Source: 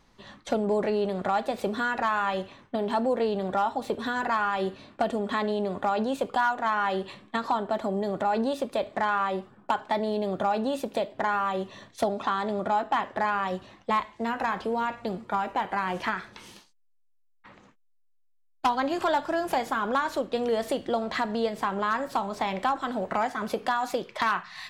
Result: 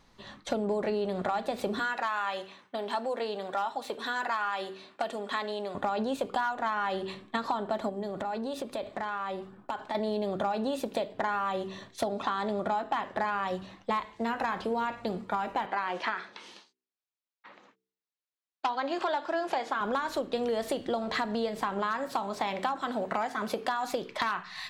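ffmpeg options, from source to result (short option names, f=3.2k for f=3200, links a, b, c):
-filter_complex "[0:a]asettb=1/sr,asplit=3[a][b][c];[a]atrim=end=1.794[d];[b]atrim=start=1.79:end=5.75,asetpts=PTS-STARTPTS,afade=t=in:d=0.004:c=qsin,afade=t=out:st=3.956:d=0.004:c=qsin,highpass=f=810:p=1[e];[c]atrim=start=5.746[f];[d][e]acrossfade=d=0.004:c1=hsin:c2=qsin[g];[g][f]acrossfade=d=0.004:c1=qsin:c2=hsin,asettb=1/sr,asplit=3[h][i][j];[h]atrim=end=7.894[k];[i]atrim=start=7.89:end=9.95,asetpts=PTS-STARTPTS,afade=t=in:d=0.004:c=qsin,afade=t=out:st=2.056:d=0.004:c=qsin,acompressor=threshold=-31dB:ratio=4:attack=3.2:release=140:knee=1:detection=peak[l];[j]atrim=start=9.946[m];[k][l]acrossfade=d=0.004:c1=hsin:c2=qsin[n];[n][m]acrossfade=d=0.004:c1=qsin:c2=hsin,asettb=1/sr,asplit=3[o][p][q];[o]atrim=end=15.664[r];[p]atrim=start=15.66:end=19.81,asetpts=PTS-STARTPTS,afade=t=in:d=0.004:c=qsin,afade=t=out:st=4.146:d=0.004:c=qsin,highpass=330,lowpass=5.5k[s];[q]atrim=start=19.806[t];[r][s]acrossfade=d=0.004:c1=hsin:c2=qsin[u];[u][t]acrossfade=d=0.004:c1=qsin:c2=hsin,asettb=1/sr,asplit=3[v][w][x];[v]atrim=end=21.794[y];[w]atrim=start=21.79:end=23.85,asetpts=PTS-STARTPTS,afade=t=in:d=0.004:c=qsin,afade=t=out:st=2.056:d=0.004:c=qsin,lowshelf=f=80:g=-12[z];[x]atrim=start=23.846[aa];[y][z]acrossfade=d=0.004:c1=hsin:c2=qsin[ab];[ab][aa]acrossfade=d=0.004:c1=qsin:c2=hsin,equalizer=f=4k:t=o:w=0.34:g=2.5,bandreject=f=63.59:t=h:w=4,bandreject=f=127.18:t=h:w=4,bandreject=f=190.77:t=h:w=4,bandreject=f=254.36:t=h:w=4,bandreject=f=317.95:t=h:w=4,bandreject=f=381.54:t=h:w=4,bandreject=f=445.13:t=h:w=4,acompressor=threshold=-26dB:ratio=6"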